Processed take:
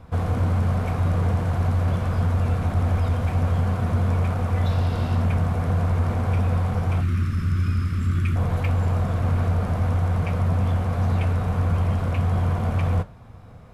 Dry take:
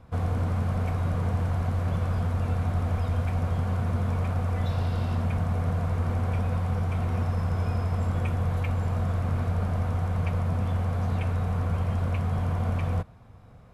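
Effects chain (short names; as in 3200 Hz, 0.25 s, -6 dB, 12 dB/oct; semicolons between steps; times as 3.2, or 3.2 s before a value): 7–8.36 Chebyshev band-stop 350–1200 Hz, order 4; in parallel at -6.5 dB: overloaded stage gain 28.5 dB; on the sum: flange 1.7 Hz, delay 9.8 ms, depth 8.4 ms, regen -66%; gain +7 dB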